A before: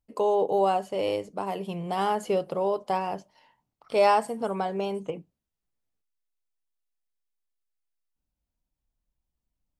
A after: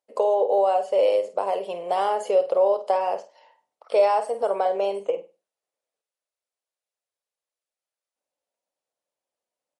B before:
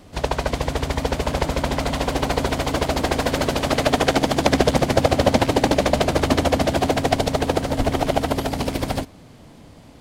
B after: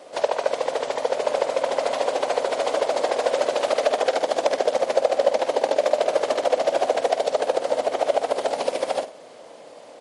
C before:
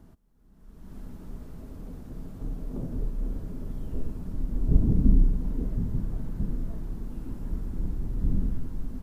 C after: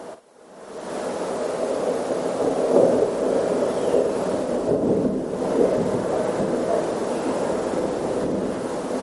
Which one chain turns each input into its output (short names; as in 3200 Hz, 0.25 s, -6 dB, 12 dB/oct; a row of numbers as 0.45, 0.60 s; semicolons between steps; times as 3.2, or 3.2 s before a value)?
compressor 4:1, threshold -25 dBFS; resonant high-pass 540 Hz, resonance Q 3.4; flutter echo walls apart 8.6 m, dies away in 0.28 s; downsampling 32000 Hz; MP3 48 kbps 48000 Hz; match loudness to -23 LUFS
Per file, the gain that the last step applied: +1.5, +1.5, +24.5 dB